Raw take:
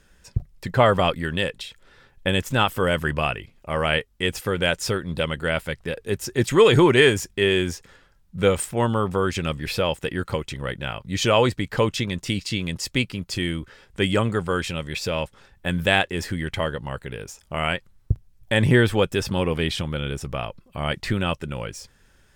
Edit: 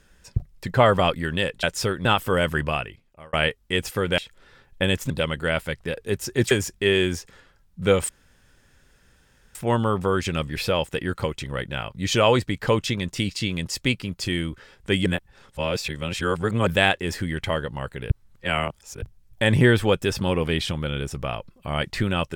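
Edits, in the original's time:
1.63–2.55 s: swap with 4.68–5.10 s
3.09–3.83 s: fade out
6.51–7.07 s: delete
8.65 s: insert room tone 1.46 s
14.16–15.77 s: reverse
17.20–18.12 s: reverse

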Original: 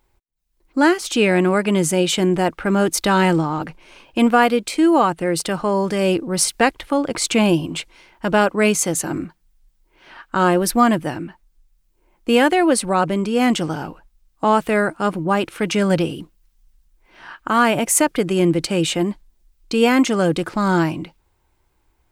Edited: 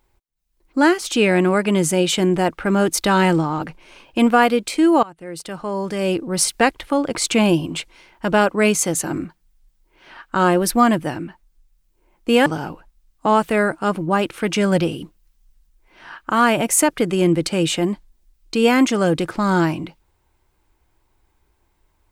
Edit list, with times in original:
5.03–6.47 s: fade in, from -22.5 dB
12.46–13.64 s: delete

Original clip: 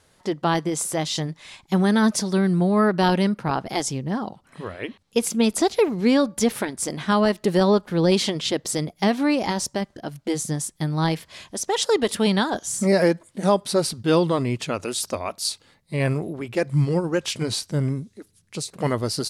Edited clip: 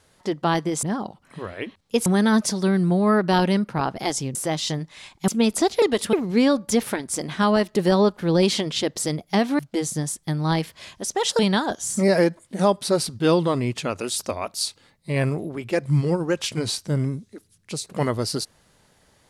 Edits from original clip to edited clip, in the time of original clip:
0.83–1.76 s: swap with 4.05–5.28 s
9.28–10.12 s: delete
11.92–12.23 s: move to 5.82 s

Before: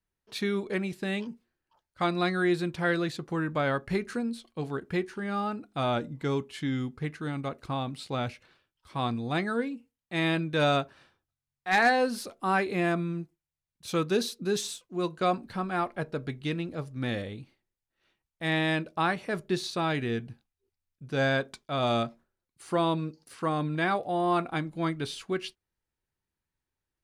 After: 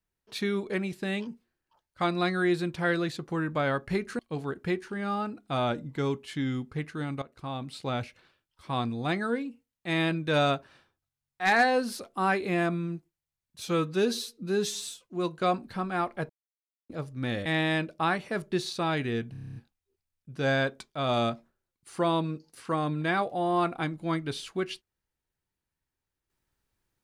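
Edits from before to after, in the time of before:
4.19–4.45 s: delete
7.48–8.23 s: fade in equal-power, from -15.5 dB
13.89–14.82 s: stretch 1.5×
16.09–16.69 s: mute
17.25–18.43 s: delete
20.29 s: stutter 0.03 s, 9 plays

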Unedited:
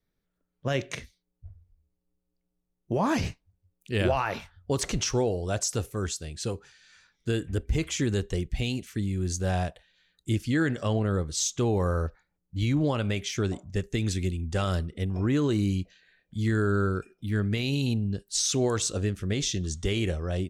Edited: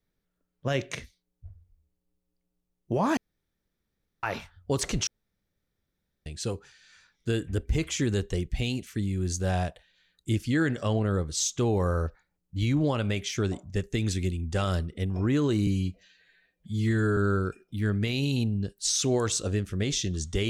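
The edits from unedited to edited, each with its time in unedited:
3.17–4.23 s: room tone
5.07–6.26 s: room tone
15.67–16.67 s: stretch 1.5×

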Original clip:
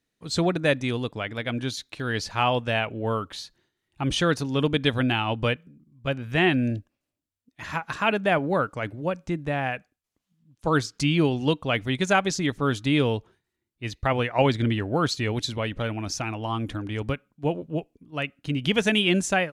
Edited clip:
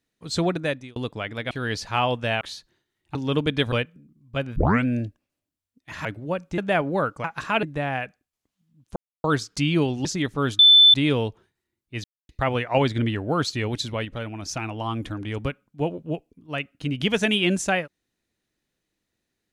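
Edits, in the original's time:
0.52–0.96 s: fade out
1.51–1.95 s: delete
2.85–3.28 s: delete
4.02–4.42 s: delete
4.99–5.43 s: delete
6.27 s: tape start 0.29 s
7.76–8.15 s: swap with 8.81–9.34 s
10.67 s: insert silence 0.28 s
11.48–12.29 s: delete
12.83 s: add tone 3.52 kHz -9 dBFS 0.35 s
13.93 s: insert silence 0.25 s
15.69–16.13 s: gain -3.5 dB

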